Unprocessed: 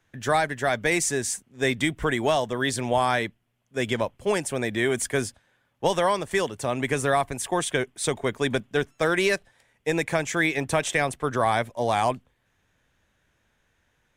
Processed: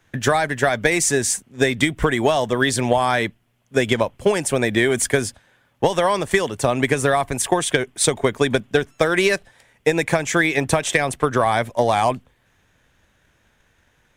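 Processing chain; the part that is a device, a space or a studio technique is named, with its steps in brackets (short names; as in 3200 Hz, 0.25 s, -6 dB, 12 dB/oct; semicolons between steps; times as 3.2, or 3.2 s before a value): drum-bus smash (transient shaper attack +7 dB, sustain +1 dB; compressor, threshold -20 dBFS, peak gain reduction 9 dB; soft clip -9.5 dBFS, distortion -24 dB); gain +7.5 dB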